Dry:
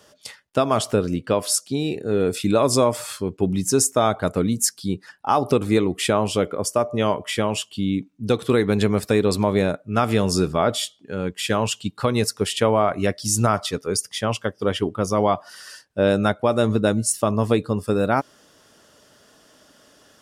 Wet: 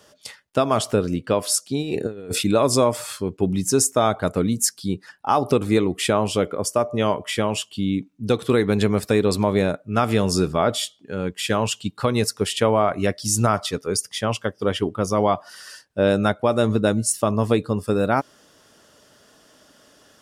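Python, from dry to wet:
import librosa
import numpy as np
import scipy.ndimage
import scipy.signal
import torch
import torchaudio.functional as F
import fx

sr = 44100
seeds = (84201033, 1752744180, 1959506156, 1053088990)

y = fx.over_compress(x, sr, threshold_db=-27.0, ratio=-0.5, at=(1.81, 2.43), fade=0.02)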